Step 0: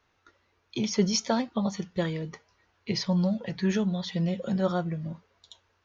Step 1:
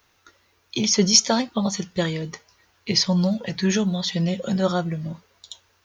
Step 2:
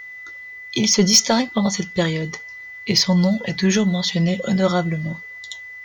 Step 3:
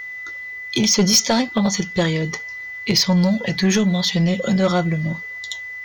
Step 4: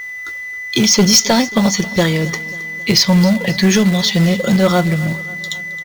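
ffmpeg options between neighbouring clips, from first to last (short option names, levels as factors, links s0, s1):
-af "aemphasis=mode=production:type=75kf,volume=1.68"
-af "acontrast=86,aeval=exprs='val(0)+0.0282*sin(2*PI*2000*n/s)':c=same,volume=0.708"
-filter_complex "[0:a]asplit=2[s0][s1];[s1]acompressor=threshold=0.0562:ratio=6,volume=0.708[s2];[s0][s2]amix=inputs=2:normalize=0,asoftclip=type=tanh:threshold=0.376"
-filter_complex "[0:a]asplit=2[s0][s1];[s1]acrusher=bits=2:mode=log:mix=0:aa=0.000001,volume=0.668[s2];[s0][s2]amix=inputs=2:normalize=0,aecho=1:1:269|538|807|1076|1345:0.112|0.064|0.0365|0.0208|0.0118"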